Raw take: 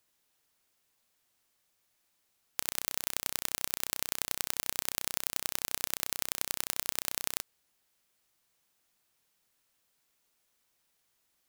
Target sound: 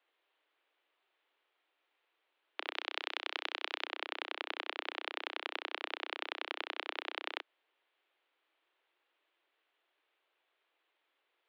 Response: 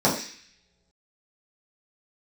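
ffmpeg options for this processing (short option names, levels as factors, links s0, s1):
-filter_complex "[0:a]highpass=f=150:t=q:w=0.5412,highpass=f=150:t=q:w=1.307,lowpass=f=3300:t=q:w=0.5176,lowpass=f=3300:t=q:w=0.7071,lowpass=f=3300:t=q:w=1.932,afreqshift=160,asettb=1/sr,asplit=3[s0][s1][s2];[s0]atrim=end=2.744[s3];[s1]atrim=start=2.74:end=3.85,asetpts=PTS-STARTPTS,afade=t=in:d=0.004:c=qsin,afade=t=out:st=1.106:d=0.004:c=qsin,aemphasis=mode=production:type=bsi[s4];[s2]atrim=start=3.846[s5];[s3][s4]acrossfade=d=0.004:c1=hsin:c2=qsin[s6];[s6][s5]acrossfade=d=0.004:c1=qsin:c2=hsin,volume=1.33"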